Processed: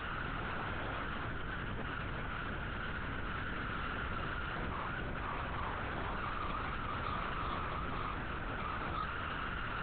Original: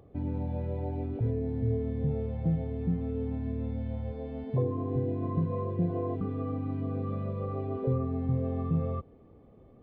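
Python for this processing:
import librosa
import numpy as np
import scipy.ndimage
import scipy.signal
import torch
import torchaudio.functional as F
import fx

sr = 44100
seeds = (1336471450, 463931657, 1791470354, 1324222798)

y = fx.delta_mod(x, sr, bps=16000, step_db=-39.5)
y = fx.rider(y, sr, range_db=4, speed_s=0.5)
y = fx.bandpass_q(y, sr, hz=1400.0, q=9.7)
y = fx.whisperise(y, sr, seeds[0])
y = fx.cheby_harmonics(y, sr, harmonics=(4,), levels_db=(-12,), full_scale_db=-38.5)
y = np.maximum(y, 0.0)
y = fx.doubler(y, sr, ms=36.0, db=-2.0)
y = fx.lpc_vocoder(y, sr, seeds[1], excitation='whisper', order=8)
y = fx.env_flatten(y, sr, amount_pct=70)
y = F.gain(torch.from_numpy(y), 15.0).numpy()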